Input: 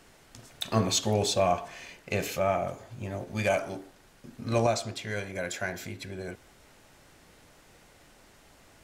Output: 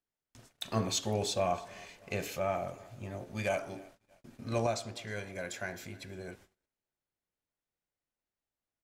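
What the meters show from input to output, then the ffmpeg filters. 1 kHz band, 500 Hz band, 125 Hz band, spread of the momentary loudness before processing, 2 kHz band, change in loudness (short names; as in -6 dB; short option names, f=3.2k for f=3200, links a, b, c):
-6.0 dB, -6.0 dB, -6.0 dB, 15 LU, -6.0 dB, -6.0 dB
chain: -af "aecho=1:1:311|622|933|1244:0.0708|0.0375|0.0199|0.0105,agate=range=-33dB:threshold=-50dB:ratio=16:detection=peak,volume=-6dB"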